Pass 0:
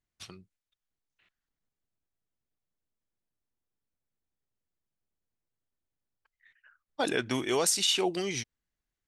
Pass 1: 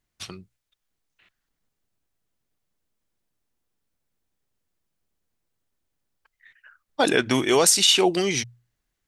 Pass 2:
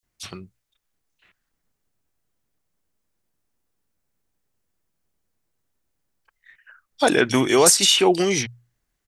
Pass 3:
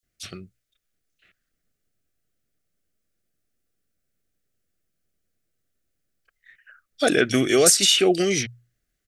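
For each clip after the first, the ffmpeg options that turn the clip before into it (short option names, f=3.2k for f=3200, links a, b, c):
-af "bandreject=f=60:t=h:w=6,bandreject=f=120:t=h:w=6,volume=9dB"
-filter_complex "[0:a]acrossover=split=3400[a][b];[a]adelay=30[c];[c][b]amix=inputs=2:normalize=0,volume=3dB"
-af "asuperstop=centerf=940:order=4:qfactor=1.9,volume=-1dB"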